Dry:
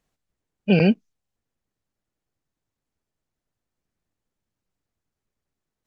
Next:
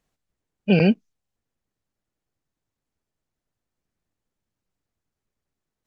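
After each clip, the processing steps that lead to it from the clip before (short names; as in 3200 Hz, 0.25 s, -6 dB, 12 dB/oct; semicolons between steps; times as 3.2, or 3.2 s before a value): nothing audible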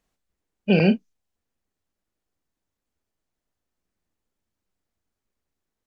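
bell 130 Hz -12.5 dB 0.31 oct; doubler 37 ms -10 dB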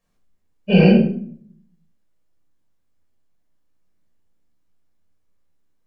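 shoebox room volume 820 m³, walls furnished, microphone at 5.7 m; gain -4 dB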